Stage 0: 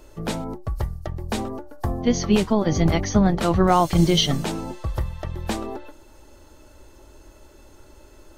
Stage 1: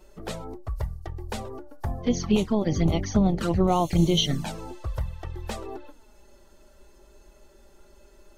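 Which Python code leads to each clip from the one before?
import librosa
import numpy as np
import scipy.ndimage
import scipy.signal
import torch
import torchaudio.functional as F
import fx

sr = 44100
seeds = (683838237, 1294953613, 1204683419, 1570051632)

y = fx.env_flanger(x, sr, rest_ms=5.6, full_db=-14.5)
y = y * 10.0 ** (-3.0 / 20.0)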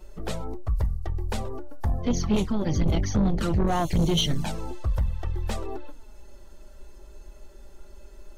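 y = fx.low_shelf(x, sr, hz=76.0, db=10.5)
y = 10.0 ** (-18.5 / 20.0) * np.tanh(y / 10.0 ** (-18.5 / 20.0))
y = y * 10.0 ** (1.5 / 20.0)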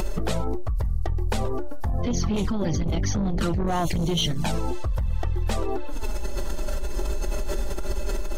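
y = fx.env_flatten(x, sr, amount_pct=100)
y = y * 10.0 ** (-4.0 / 20.0)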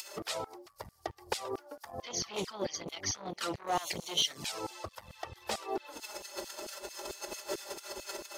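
y = fx.graphic_eq_31(x, sr, hz=(100, 160, 250, 1600, 5000), db=(7, -6, -5, -3, 5))
y = fx.filter_lfo_highpass(y, sr, shape='saw_down', hz=4.5, low_hz=220.0, high_hz=3300.0, q=0.74)
y = y * 10.0 ** (-3.0 / 20.0)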